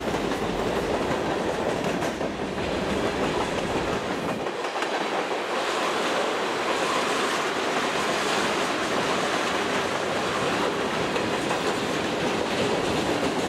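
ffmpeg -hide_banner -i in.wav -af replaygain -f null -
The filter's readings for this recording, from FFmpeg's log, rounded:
track_gain = +8.2 dB
track_peak = 0.149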